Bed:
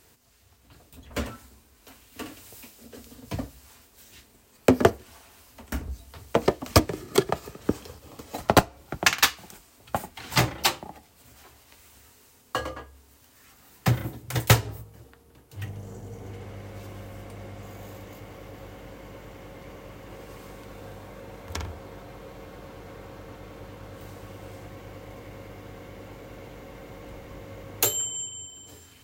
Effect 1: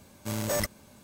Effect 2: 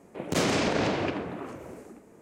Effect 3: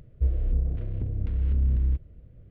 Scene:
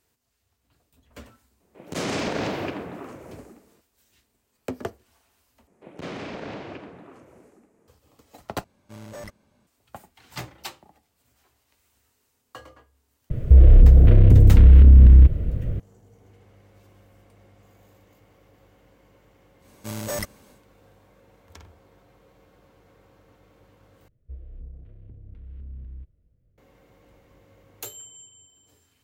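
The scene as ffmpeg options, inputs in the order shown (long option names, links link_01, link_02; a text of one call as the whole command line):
ffmpeg -i bed.wav -i cue0.wav -i cue1.wav -i cue2.wav -filter_complex "[2:a]asplit=2[link_01][link_02];[1:a]asplit=2[link_03][link_04];[3:a]asplit=2[link_05][link_06];[0:a]volume=-14dB[link_07];[link_01]dynaudnorm=framelen=100:gausssize=7:maxgain=12dB[link_08];[link_02]acrossover=split=4100[link_09][link_10];[link_10]acompressor=threshold=-52dB:ratio=4:attack=1:release=60[link_11];[link_09][link_11]amix=inputs=2:normalize=0[link_12];[link_03]lowpass=frequency=2900:poles=1[link_13];[link_05]alimiter=level_in=27dB:limit=-1dB:release=50:level=0:latency=1[link_14];[link_07]asplit=4[link_15][link_16][link_17][link_18];[link_15]atrim=end=5.674[link_19];[link_12]atrim=end=2.21,asetpts=PTS-STARTPTS,volume=-9.5dB[link_20];[link_16]atrim=start=7.876:end=8.644[link_21];[link_13]atrim=end=1.03,asetpts=PTS-STARTPTS,volume=-9.5dB[link_22];[link_17]atrim=start=9.666:end=24.084[link_23];[link_06]atrim=end=2.5,asetpts=PTS-STARTPTS,volume=-16dB[link_24];[link_18]atrim=start=26.576[link_25];[link_08]atrim=end=2.21,asetpts=PTS-STARTPTS,volume=-12.5dB,afade=type=in:duration=0.004:curve=hsin,afade=type=out:start_time=2.206:duration=0.004:curve=hsin,adelay=1600[link_26];[link_14]atrim=end=2.5,asetpts=PTS-STARTPTS,volume=-3.5dB,afade=type=in:duration=0.004:curve=hsin,afade=type=out:start_time=2.496:duration=0.004:curve=hsin,adelay=13300[link_27];[link_04]atrim=end=1.03,asetpts=PTS-STARTPTS,volume=-1dB,afade=type=in:duration=0.1,afade=type=out:start_time=0.93:duration=0.1,adelay=19590[link_28];[link_19][link_20]acrossfade=duration=0.004:curve1=hsin:curve2=hsin[link_29];[link_29][link_21]acrossfade=duration=0.004:curve1=hsin:curve2=hsin[link_30];[link_30][link_22]acrossfade=duration=0.004:curve1=hsin:curve2=hsin[link_31];[link_31][link_23]acrossfade=duration=0.004:curve1=hsin:curve2=hsin[link_32];[link_32][link_24]acrossfade=duration=0.004:curve1=hsin:curve2=hsin[link_33];[link_33][link_25]acrossfade=duration=0.004:curve1=hsin:curve2=hsin[link_34];[link_34][link_26][link_27][link_28]amix=inputs=4:normalize=0" out.wav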